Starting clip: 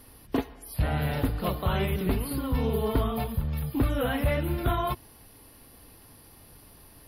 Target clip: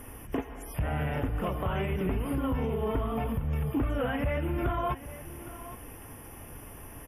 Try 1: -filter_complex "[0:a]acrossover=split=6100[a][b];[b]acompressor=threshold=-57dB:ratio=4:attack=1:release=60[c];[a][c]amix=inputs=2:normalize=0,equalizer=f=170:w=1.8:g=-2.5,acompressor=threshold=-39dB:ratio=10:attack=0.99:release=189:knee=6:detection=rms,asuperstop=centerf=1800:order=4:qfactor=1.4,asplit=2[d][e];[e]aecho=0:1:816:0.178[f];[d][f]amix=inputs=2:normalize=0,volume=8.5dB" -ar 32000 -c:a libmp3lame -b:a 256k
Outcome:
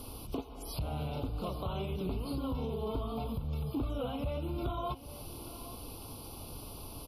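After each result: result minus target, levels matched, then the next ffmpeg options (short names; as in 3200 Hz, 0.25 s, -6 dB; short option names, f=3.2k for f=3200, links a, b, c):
2000 Hz band -8.0 dB; compressor: peak gain reduction +6 dB
-filter_complex "[0:a]acrossover=split=6100[a][b];[b]acompressor=threshold=-57dB:ratio=4:attack=1:release=60[c];[a][c]amix=inputs=2:normalize=0,equalizer=f=170:w=1.8:g=-2.5,acompressor=threshold=-39dB:ratio=10:attack=0.99:release=189:knee=6:detection=rms,asuperstop=centerf=4200:order=4:qfactor=1.4,asplit=2[d][e];[e]aecho=0:1:816:0.178[f];[d][f]amix=inputs=2:normalize=0,volume=8.5dB" -ar 32000 -c:a libmp3lame -b:a 256k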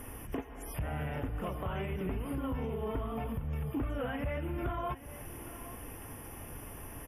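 compressor: peak gain reduction +6 dB
-filter_complex "[0:a]acrossover=split=6100[a][b];[b]acompressor=threshold=-57dB:ratio=4:attack=1:release=60[c];[a][c]amix=inputs=2:normalize=0,equalizer=f=170:w=1.8:g=-2.5,acompressor=threshold=-32.5dB:ratio=10:attack=0.99:release=189:knee=6:detection=rms,asuperstop=centerf=4200:order=4:qfactor=1.4,asplit=2[d][e];[e]aecho=0:1:816:0.178[f];[d][f]amix=inputs=2:normalize=0,volume=8.5dB" -ar 32000 -c:a libmp3lame -b:a 256k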